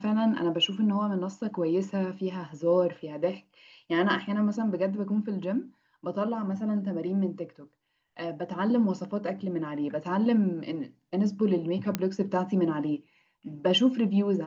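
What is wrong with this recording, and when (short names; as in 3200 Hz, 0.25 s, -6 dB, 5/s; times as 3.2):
11.95 pop -12 dBFS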